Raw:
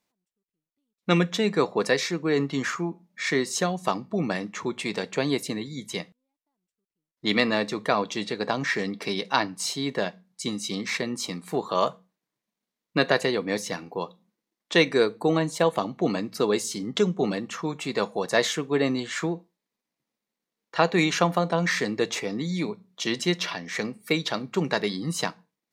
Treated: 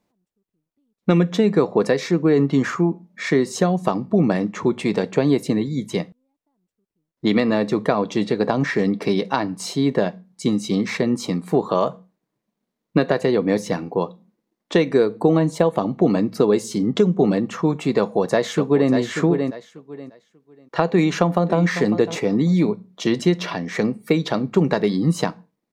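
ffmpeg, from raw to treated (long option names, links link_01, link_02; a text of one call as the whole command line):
ffmpeg -i in.wav -filter_complex "[0:a]asplit=2[link_01][link_02];[link_02]afade=type=in:start_time=17.98:duration=0.01,afade=type=out:start_time=18.91:duration=0.01,aecho=0:1:590|1180|1770:0.354813|0.0709627|0.0141925[link_03];[link_01][link_03]amix=inputs=2:normalize=0,asplit=2[link_04][link_05];[link_05]afade=type=in:start_time=20.9:duration=0.01,afade=type=out:start_time=21.6:duration=0.01,aecho=0:1:550|1100:0.149624|0.0224435[link_06];[link_04][link_06]amix=inputs=2:normalize=0,acompressor=threshold=-23dB:ratio=4,tiltshelf=frequency=1100:gain=7,volume=5.5dB" out.wav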